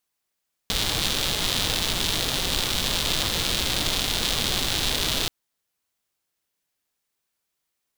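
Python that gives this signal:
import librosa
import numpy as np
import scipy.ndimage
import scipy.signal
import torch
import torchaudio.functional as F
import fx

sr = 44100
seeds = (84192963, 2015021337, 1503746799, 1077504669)

y = fx.rain(sr, seeds[0], length_s=4.58, drops_per_s=210.0, hz=3600.0, bed_db=-1.0)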